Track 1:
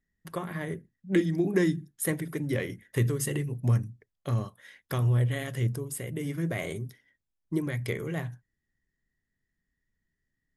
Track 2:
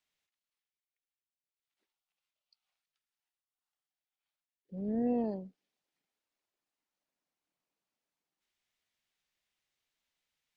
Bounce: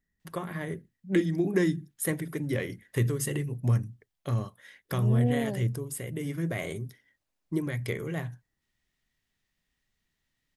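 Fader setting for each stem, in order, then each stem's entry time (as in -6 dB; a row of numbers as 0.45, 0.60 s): -0.5, +2.5 dB; 0.00, 0.20 s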